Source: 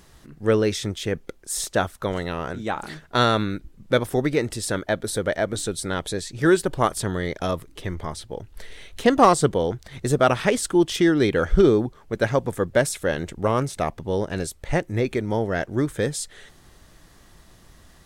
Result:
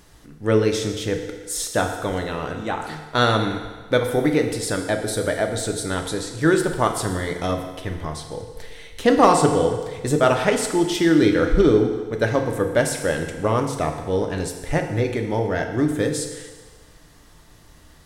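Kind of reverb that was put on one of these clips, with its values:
feedback delay network reverb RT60 1.4 s, low-frequency decay 0.75×, high-frequency decay 0.95×, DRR 3.5 dB

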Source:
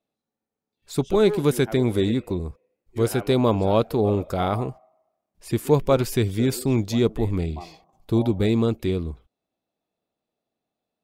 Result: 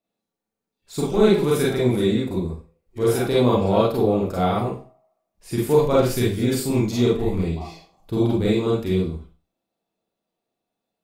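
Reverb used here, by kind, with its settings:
four-comb reverb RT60 0.35 s, combs from 33 ms, DRR −5.5 dB
level −4.5 dB

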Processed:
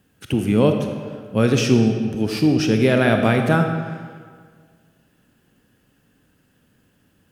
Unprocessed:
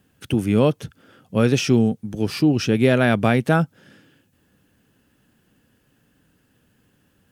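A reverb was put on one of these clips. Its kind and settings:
comb and all-pass reverb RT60 1.8 s, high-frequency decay 0.75×, pre-delay 0 ms, DRR 4.5 dB

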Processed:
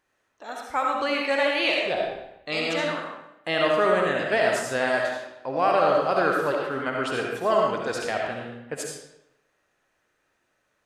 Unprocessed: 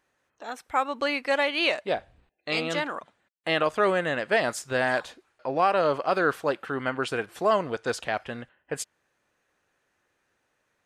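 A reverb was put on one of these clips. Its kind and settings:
comb and all-pass reverb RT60 0.86 s, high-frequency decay 0.85×, pre-delay 30 ms, DRR −1 dB
level −1.5 dB

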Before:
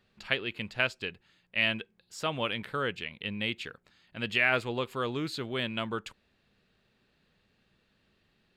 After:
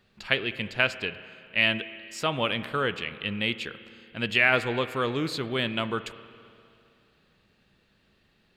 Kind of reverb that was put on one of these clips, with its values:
spring reverb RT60 2.5 s, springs 30/51 ms, chirp 75 ms, DRR 13 dB
level +4.5 dB

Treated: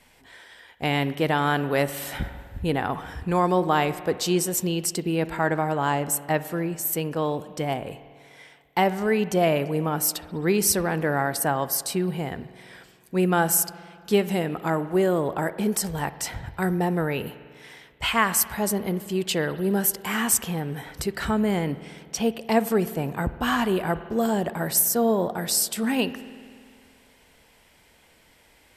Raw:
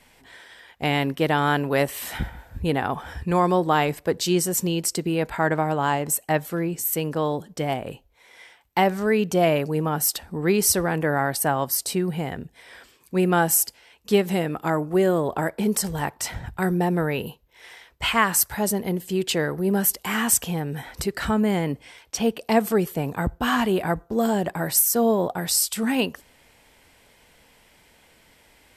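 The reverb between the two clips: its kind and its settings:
spring reverb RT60 2.1 s, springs 49 ms, chirp 20 ms, DRR 14 dB
level −1.5 dB

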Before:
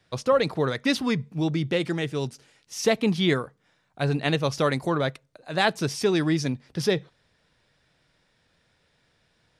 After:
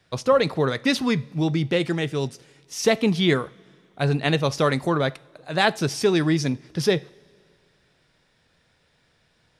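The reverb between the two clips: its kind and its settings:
coupled-rooms reverb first 0.4 s, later 2.3 s, from −17 dB, DRR 17 dB
level +2.5 dB

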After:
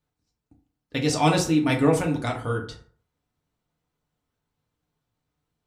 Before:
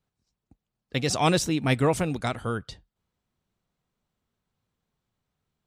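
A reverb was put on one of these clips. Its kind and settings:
feedback delay network reverb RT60 0.49 s, low-frequency decay 0.95×, high-frequency decay 0.55×, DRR 0 dB
level −2 dB

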